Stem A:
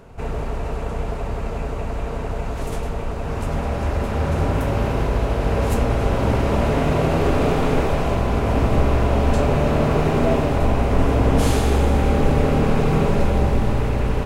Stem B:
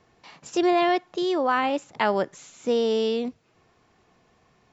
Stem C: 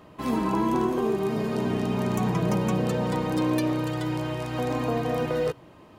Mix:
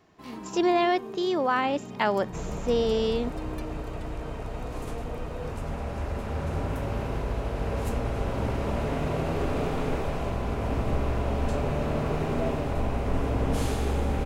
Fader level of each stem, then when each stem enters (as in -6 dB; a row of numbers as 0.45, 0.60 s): -9.5, -2.0, -14.0 dB; 2.15, 0.00, 0.00 s